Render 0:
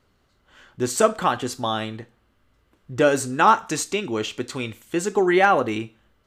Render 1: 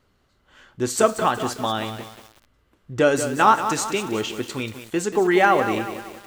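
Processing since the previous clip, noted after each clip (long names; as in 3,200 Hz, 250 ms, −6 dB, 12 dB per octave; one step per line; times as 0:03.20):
feedback echo at a low word length 185 ms, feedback 55%, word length 6 bits, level −9.5 dB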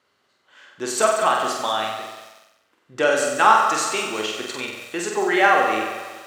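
meter weighting curve A
on a send: flutter between parallel walls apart 8 metres, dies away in 0.81 s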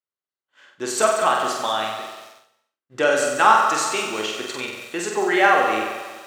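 downward expander −44 dBFS
on a send at −17.5 dB: convolution reverb, pre-delay 3 ms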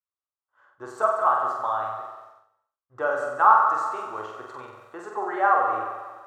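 drawn EQ curve 110 Hz 0 dB, 180 Hz −18 dB, 1,200 Hz +3 dB, 2,400 Hz −24 dB
level −1.5 dB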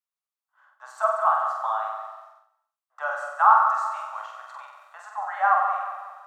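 Butterworth high-pass 630 Hz 72 dB per octave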